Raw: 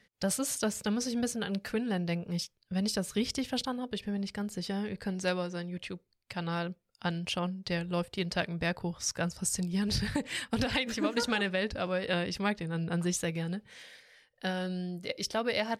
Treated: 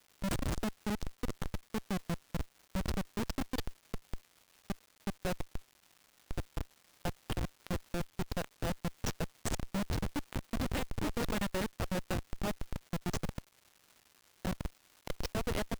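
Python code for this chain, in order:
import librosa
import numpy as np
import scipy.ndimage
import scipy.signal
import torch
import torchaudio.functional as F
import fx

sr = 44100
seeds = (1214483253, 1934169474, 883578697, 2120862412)

y = fx.schmitt(x, sr, flips_db=-26.0)
y = fx.dmg_crackle(y, sr, seeds[0], per_s=460.0, level_db=-50.0)
y = y * 10.0 ** (1.0 / 20.0)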